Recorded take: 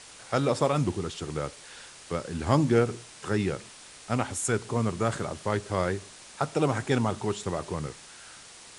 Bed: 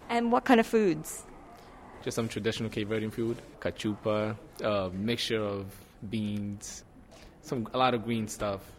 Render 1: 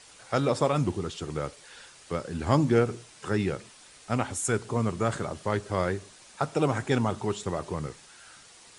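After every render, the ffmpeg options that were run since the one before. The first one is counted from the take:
-af "afftdn=nr=6:nf=-49"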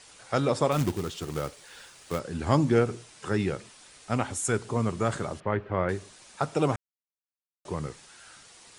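-filter_complex "[0:a]asplit=3[a][b][c];[a]afade=t=out:st=0.71:d=0.02[d];[b]acrusher=bits=3:mode=log:mix=0:aa=0.000001,afade=t=in:st=0.71:d=0.02,afade=t=out:st=2.18:d=0.02[e];[c]afade=t=in:st=2.18:d=0.02[f];[d][e][f]amix=inputs=3:normalize=0,asettb=1/sr,asplit=3[g][h][i];[g]atrim=end=5.404[j];[h]atrim=start=5.4:end=5.89,asetpts=PTS-STARTPTS,afade=t=in:d=0.004:c=qsin,afade=t=out:st=0.486:d=0.004:c=qsin,lowpass=f=2.6k:w=0.5412,lowpass=f=2.6k:w=1.3066[k];[i]atrim=start=5.886[l];[j][k]acrossfade=d=0.004:c1=hsin:c2=qsin[m];[m][l]acrossfade=d=0.004:c1=qsin:c2=hsin,asplit=3[n][o][p];[n]atrim=end=6.76,asetpts=PTS-STARTPTS,afade=t=out:st=6.756:d=0.004:c=hsin[q];[o]atrim=start=6.76:end=7.65,asetpts=PTS-STARTPTS,volume=0[r];[p]atrim=start=7.65,asetpts=PTS-STARTPTS,afade=t=in:d=0.004:c=hsin[s];[q][r][s]concat=n=3:v=0:a=1"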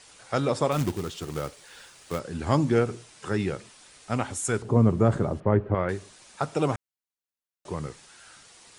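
-filter_complex "[0:a]asettb=1/sr,asplit=3[a][b][c];[a]atrim=end=4.624[d];[b]atrim=start=4.62:end=5.75,asetpts=PTS-STARTPTS,afade=t=in:d=0.004:c=qsin,afade=t=out:st=1.126:d=0.004:c=qsin,tiltshelf=f=1.1k:g=9[e];[c]atrim=start=5.746[f];[d][e]acrossfade=d=0.004:c1=hsin:c2=qsin[g];[g][f]acrossfade=d=0.004:c1=qsin:c2=hsin"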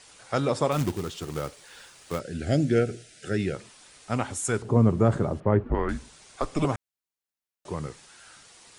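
-filter_complex "[0:a]asettb=1/sr,asplit=3[a][b][c];[a]atrim=end=2.214[d];[b]atrim=start=2.21:end=3.55,asetpts=PTS-STARTPTS,afade=t=in:d=0.004:c=qsin,afade=t=out:st=1.336:d=0.004:c=qsin,asuperstop=centerf=1000:order=8:qfactor=1.6[e];[c]atrim=start=3.546[f];[d][e]acrossfade=d=0.004:c1=hsin:c2=qsin[g];[g][f]acrossfade=d=0.004:c1=qsin:c2=hsin,asettb=1/sr,asplit=3[h][i][j];[h]atrim=end=5.634[k];[i]atrim=start=5.63:end=6.65,asetpts=PTS-STARTPTS,afade=t=in:d=0.004:c=qsin,afade=t=out:st=1.016:d=0.004:c=qsin,afreqshift=-160[l];[j]atrim=start=6.646[m];[k][l]acrossfade=d=0.004:c1=hsin:c2=qsin[n];[n][m]acrossfade=d=0.004:c1=qsin:c2=hsin"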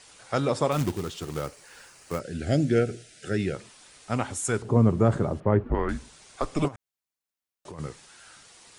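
-filter_complex "[0:a]asettb=1/sr,asplit=3[a][b][c];[a]atrim=end=1.464[d];[b]atrim=start=1.46:end=2.24,asetpts=PTS-STARTPTS,afade=t=in:d=0.004:c=qsin,afade=t=out:st=0.776:d=0.004:c=qsin,equalizer=f=3.5k:t=o:w=0.35:g=-9[e];[c]atrim=start=2.236[f];[d][e]acrossfade=d=0.004:c1=hsin:c2=qsin[g];[g][f]acrossfade=d=0.004:c1=qsin:c2=hsin,asplit=3[h][i][j];[h]afade=t=out:st=6.67:d=0.02[k];[i]acompressor=threshold=-36dB:ratio=12:attack=3.2:release=140:knee=1:detection=peak,afade=t=in:st=6.67:d=0.02,afade=t=out:st=7.78:d=0.02[l];[j]afade=t=in:st=7.78:d=0.02[m];[k][l][m]amix=inputs=3:normalize=0"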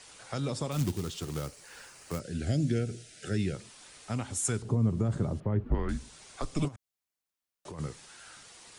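-filter_complex "[0:a]alimiter=limit=-14.5dB:level=0:latency=1:release=166,acrossover=split=250|3000[a][b][c];[b]acompressor=threshold=-44dB:ratio=2[d];[a][d][c]amix=inputs=3:normalize=0"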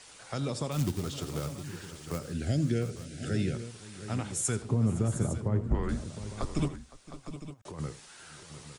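-af "aecho=1:1:83|513|711|856:0.15|0.112|0.237|0.211"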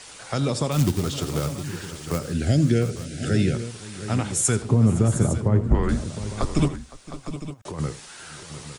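-af "volume=9dB"

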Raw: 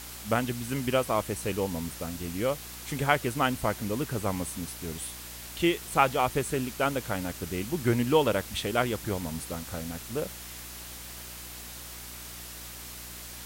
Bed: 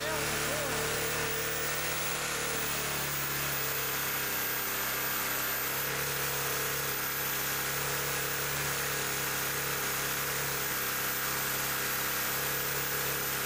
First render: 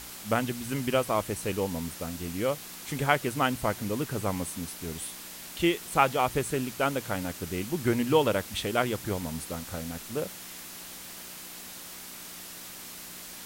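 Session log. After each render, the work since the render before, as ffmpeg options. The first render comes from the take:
-af "bandreject=f=60:t=h:w=4,bandreject=f=120:t=h:w=4"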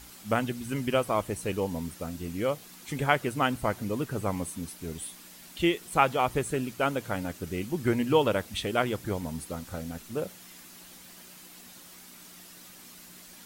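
-af "afftdn=nr=8:nf=-43"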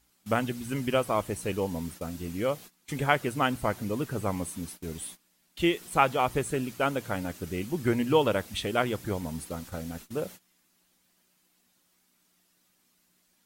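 -af "agate=range=-20dB:threshold=-43dB:ratio=16:detection=peak"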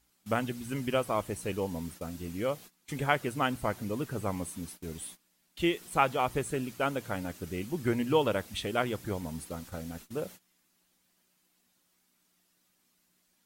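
-af "volume=-3dB"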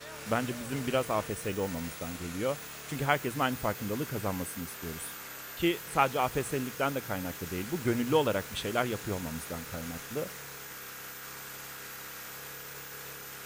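-filter_complex "[1:a]volume=-11.5dB[a];[0:a][a]amix=inputs=2:normalize=0"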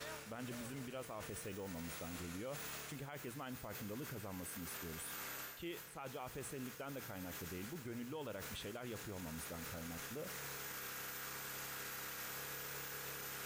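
-af "areverse,acompressor=threshold=-38dB:ratio=12,areverse,alimiter=level_in=13.5dB:limit=-24dB:level=0:latency=1:release=35,volume=-13.5dB"

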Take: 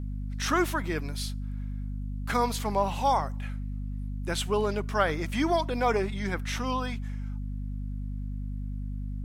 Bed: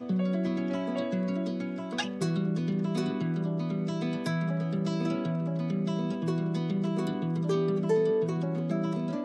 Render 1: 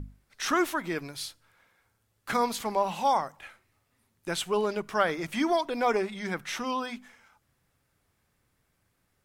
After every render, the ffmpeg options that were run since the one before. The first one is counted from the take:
-af "bandreject=f=50:t=h:w=6,bandreject=f=100:t=h:w=6,bandreject=f=150:t=h:w=6,bandreject=f=200:t=h:w=6,bandreject=f=250:t=h:w=6"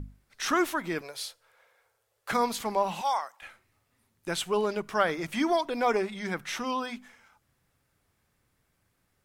-filter_complex "[0:a]asettb=1/sr,asplit=3[a][b][c];[a]atrim=end=1.014[d];[b]atrim=start=1.01:end=2.31,asetpts=PTS-STARTPTS,afade=t=in:d=0.004:c=qsin,afade=t=out:st=1.296:d=0.004:c=qsin,lowshelf=f=350:t=q:w=3:g=-11.5[e];[c]atrim=start=2.306[f];[d][e]acrossfade=d=0.004:c1=hsin:c2=qsin[g];[g][f]acrossfade=d=0.004:c1=qsin:c2=hsin,asettb=1/sr,asplit=3[h][i][j];[h]atrim=end=3.014[k];[i]atrim=start=3.01:end=3.42,asetpts=PTS-STARTPTS,afade=t=in:d=0.004:c=qsin,afade=t=out:st=0.406:d=0.004:c=qsin,highpass=870[l];[j]atrim=start=3.416[m];[k][l]acrossfade=d=0.004:c1=hsin:c2=qsin[n];[n][m]acrossfade=d=0.004:c1=qsin:c2=hsin"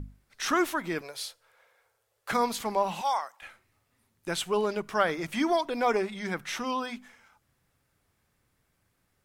-af anull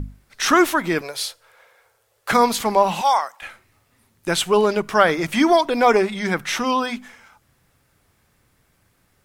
-af "volume=10.5dB,alimiter=limit=-1dB:level=0:latency=1"

